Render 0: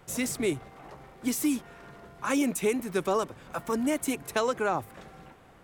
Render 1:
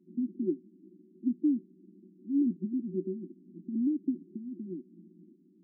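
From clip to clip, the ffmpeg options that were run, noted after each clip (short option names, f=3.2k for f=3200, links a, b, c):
-af "afftfilt=real='re*between(b*sr/4096,170,380)':imag='im*between(b*sr/4096,170,380)':win_size=4096:overlap=0.75"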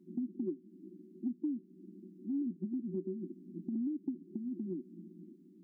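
-af "acompressor=threshold=-39dB:ratio=4,volume=3.5dB"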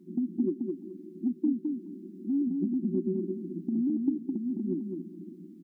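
-af "aecho=1:1:211|422|633:0.631|0.133|0.0278,volume=7dB"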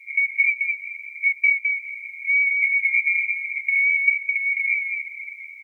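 -af "afftfilt=real='real(if(lt(b,920),b+92*(1-2*mod(floor(b/92),2)),b),0)':imag='imag(if(lt(b,920),b+92*(1-2*mod(floor(b/92),2)),b),0)':win_size=2048:overlap=0.75,volume=8.5dB"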